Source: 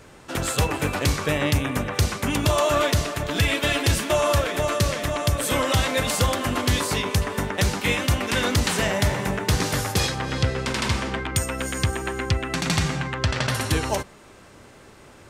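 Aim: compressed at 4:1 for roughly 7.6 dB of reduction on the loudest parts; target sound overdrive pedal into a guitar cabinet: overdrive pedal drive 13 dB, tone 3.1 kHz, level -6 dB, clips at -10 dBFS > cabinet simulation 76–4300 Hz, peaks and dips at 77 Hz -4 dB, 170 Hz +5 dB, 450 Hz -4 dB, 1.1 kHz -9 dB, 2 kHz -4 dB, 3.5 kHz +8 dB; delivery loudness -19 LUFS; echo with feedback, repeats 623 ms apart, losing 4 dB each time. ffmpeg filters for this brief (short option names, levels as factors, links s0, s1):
-filter_complex "[0:a]acompressor=threshold=0.0562:ratio=4,aecho=1:1:623|1246|1869|2492|3115|3738|4361|4984|5607:0.631|0.398|0.25|0.158|0.0994|0.0626|0.0394|0.0249|0.0157,asplit=2[s0][s1];[s1]highpass=f=720:p=1,volume=4.47,asoftclip=type=tanh:threshold=0.316[s2];[s0][s2]amix=inputs=2:normalize=0,lowpass=f=3100:p=1,volume=0.501,highpass=76,equalizer=f=77:t=q:w=4:g=-4,equalizer=f=170:t=q:w=4:g=5,equalizer=f=450:t=q:w=4:g=-4,equalizer=f=1100:t=q:w=4:g=-9,equalizer=f=2000:t=q:w=4:g=-4,equalizer=f=3500:t=q:w=4:g=8,lowpass=f=4300:w=0.5412,lowpass=f=4300:w=1.3066,volume=1.78"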